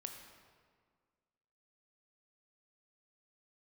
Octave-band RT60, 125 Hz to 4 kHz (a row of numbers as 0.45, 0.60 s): 1.9, 2.0, 1.8, 1.8, 1.5, 1.2 s